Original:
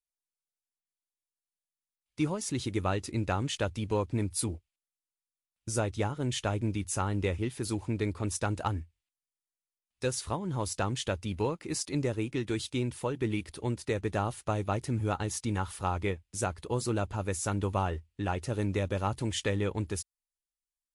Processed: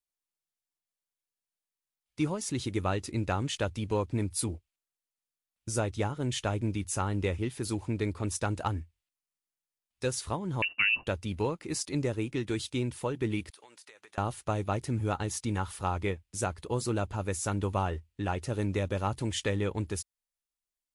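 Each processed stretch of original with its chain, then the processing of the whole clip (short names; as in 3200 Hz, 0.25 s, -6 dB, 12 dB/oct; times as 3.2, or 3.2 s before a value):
10.62–11.07 tilt -2 dB/oct + inverted band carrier 2800 Hz
13.5–14.18 HPF 970 Hz + compressor 16:1, threshold -49 dBFS
whole clip: dry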